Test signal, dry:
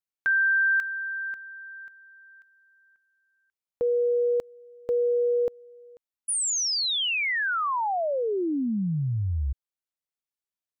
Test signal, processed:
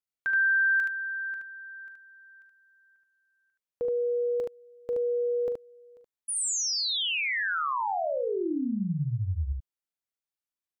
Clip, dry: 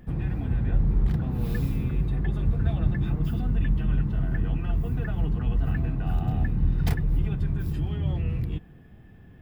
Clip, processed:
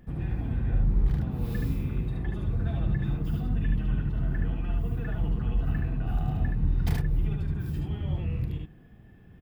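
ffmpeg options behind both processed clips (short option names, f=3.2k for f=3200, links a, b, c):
-af "aecho=1:1:41|74:0.224|0.708,volume=-4.5dB"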